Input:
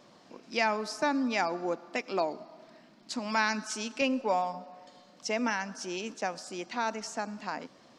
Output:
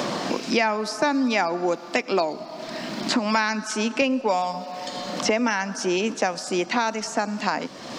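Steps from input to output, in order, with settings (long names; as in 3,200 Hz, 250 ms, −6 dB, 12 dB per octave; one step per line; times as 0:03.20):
multiband upward and downward compressor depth 100%
level +7.5 dB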